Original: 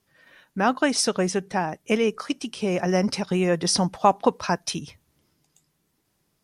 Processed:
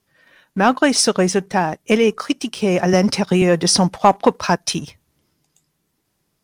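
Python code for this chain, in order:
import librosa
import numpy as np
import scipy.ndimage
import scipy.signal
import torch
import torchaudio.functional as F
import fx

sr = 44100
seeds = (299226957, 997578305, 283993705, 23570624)

y = fx.leveller(x, sr, passes=1)
y = fx.band_squash(y, sr, depth_pct=40, at=(2.93, 3.42))
y = F.gain(torch.from_numpy(y), 3.5).numpy()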